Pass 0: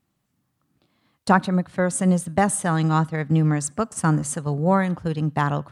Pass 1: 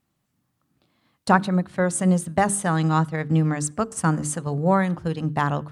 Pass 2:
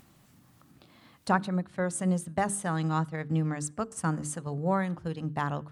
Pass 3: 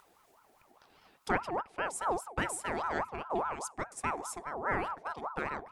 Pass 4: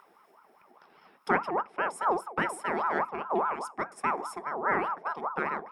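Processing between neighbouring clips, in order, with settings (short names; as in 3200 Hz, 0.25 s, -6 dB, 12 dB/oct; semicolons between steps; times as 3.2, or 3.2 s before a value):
notches 50/100/150/200/250/300/350/400/450 Hz
upward compressor, threshold -33 dBFS; gain -8 dB
ring modulator with a swept carrier 850 Hz, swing 40%, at 4.9 Hz; gain -2.5 dB
reverb RT60 0.15 s, pre-delay 3 ms, DRR 16 dB; gain -4 dB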